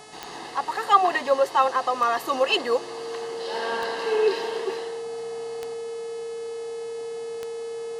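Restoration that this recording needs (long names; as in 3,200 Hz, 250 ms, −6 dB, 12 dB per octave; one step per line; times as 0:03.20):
click removal
hum removal 429.8 Hz, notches 25
notch filter 460 Hz, Q 30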